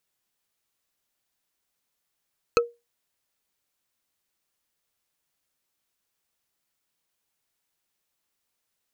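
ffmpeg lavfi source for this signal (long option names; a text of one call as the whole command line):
ffmpeg -f lavfi -i "aevalsrc='0.224*pow(10,-3*t/0.23)*sin(2*PI*473*t)+0.178*pow(10,-3*t/0.068)*sin(2*PI*1304.1*t)+0.141*pow(10,-3*t/0.03)*sin(2*PI*2556.1*t)+0.112*pow(10,-3*t/0.017)*sin(2*PI*4225.3*t)+0.0891*pow(10,-3*t/0.01)*sin(2*PI*6309.8*t)':duration=0.45:sample_rate=44100" out.wav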